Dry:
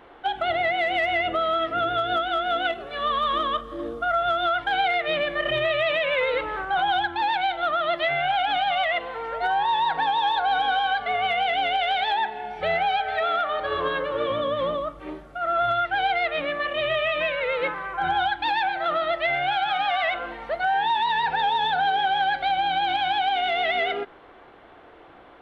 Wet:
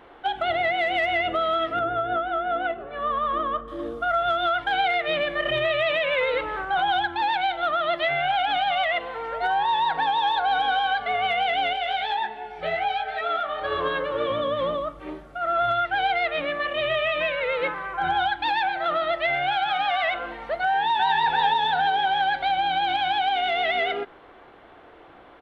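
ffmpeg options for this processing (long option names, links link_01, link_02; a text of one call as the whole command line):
ffmpeg -i in.wav -filter_complex "[0:a]asettb=1/sr,asplit=3[link_01][link_02][link_03];[link_01]atrim=end=1.794[link_04];[link_02]atrim=start=1.79:end=3.68,asetpts=PTS-STARTPTS,afade=type=in:duration=0.004:curve=qsin,afade=type=out:start_time=1.886:duration=0.004:curve=qsin,lowpass=1600[link_05];[link_03]atrim=start=3.676[link_06];[link_04][link_05]acrossfade=duration=0.004:curve1=hsin:curve2=qsin[link_07];[link_07][link_06]acrossfade=duration=0.004:curve1=qsin:curve2=hsin,asettb=1/sr,asplit=3[link_08][link_09][link_10];[link_08]atrim=end=11.734[link_11];[link_09]atrim=start=11.73:end=13.62,asetpts=PTS-STARTPTS,afade=type=in:duration=0.004:curve=qsin,afade=type=out:start_time=1.886:duration=0.004:curve=qsin,flanger=delay=16:depth=4.9:speed=1.3[link_12];[link_10]atrim=start=13.616[link_13];[link_11][link_12]acrossfade=duration=0.004:curve1=hsin:curve2=qsin[link_14];[link_14][link_13]acrossfade=duration=0.004:curve1=qsin:curve2=hsin,asplit=2[link_15][link_16];[link_16]afade=type=in:start_time=20.65:duration=0.01,afade=type=out:start_time=21.19:duration=0.01,aecho=0:1:340|680|1020|1360|1700:0.630957|0.252383|0.100953|0.0403813|0.0161525[link_17];[link_15][link_17]amix=inputs=2:normalize=0" out.wav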